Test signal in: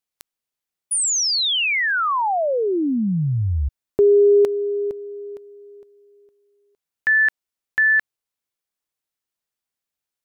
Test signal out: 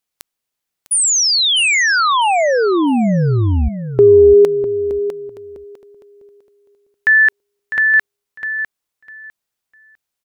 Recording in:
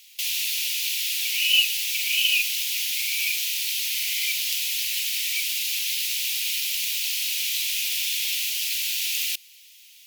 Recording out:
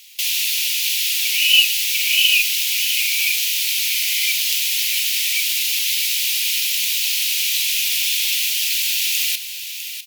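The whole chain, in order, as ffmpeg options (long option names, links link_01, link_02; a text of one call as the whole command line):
ffmpeg -i in.wav -af "aecho=1:1:652|1304|1956:0.316|0.0601|0.0114,volume=6dB" out.wav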